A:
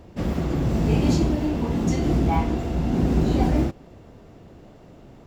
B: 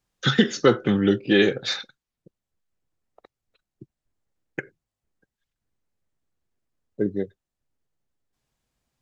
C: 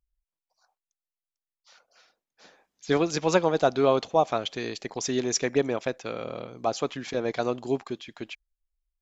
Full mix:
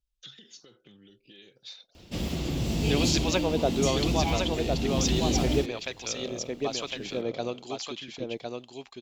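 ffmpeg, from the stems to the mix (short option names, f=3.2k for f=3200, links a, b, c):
-filter_complex "[0:a]adelay=1950,volume=-6.5dB[a];[1:a]alimiter=limit=-12.5dB:level=0:latency=1:release=55,acompressor=threshold=-28dB:ratio=4,volume=-10.5dB[b];[2:a]highshelf=f=3.6k:g=-11,acrossover=split=850[c][d];[c]aeval=exprs='val(0)*(1-0.7/2+0.7/2*cos(2*PI*1.1*n/s))':c=same[e];[d]aeval=exprs='val(0)*(1-0.7/2-0.7/2*cos(2*PI*1.1*n/s))':c=same[f];[e][f]amix=inputs=2:normalize=0,volume=-1.5dB,asplit=3[g][h][i];[h]volume=-4dB[j];[i]apad=whole_len=397511[k];[b][k]sidechaingate=range=-15dB:threshold=-57dB:ratio=16:detection=peak[l];[j]aecho=0:1:1058:1[m];[a][l][g][m]amix=inputs=4:normalize=0,highshelf=f=2.2k:t=q:w=1.5:g=11"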